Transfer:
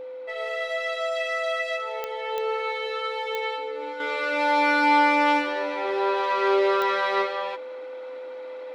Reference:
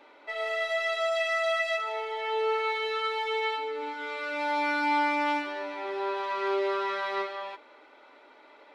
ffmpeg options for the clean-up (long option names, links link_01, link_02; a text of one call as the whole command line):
ffmpeg -i in.wav -af "adeclick=threshold=4,bandreject=frequency=510:width=30,asetnsamples=nb_out_samples=441:pad=0,asendcmd='4 volume volume -7dB',volume=0dB" out.wav